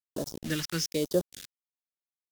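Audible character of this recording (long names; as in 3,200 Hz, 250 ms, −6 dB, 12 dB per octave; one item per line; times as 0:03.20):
a quantiser's noise floor 6 bits, dither none
phaser sweep stages 2, 1.1 Hz, lowest notch 530–2,100 Hz
Ogg Vorbis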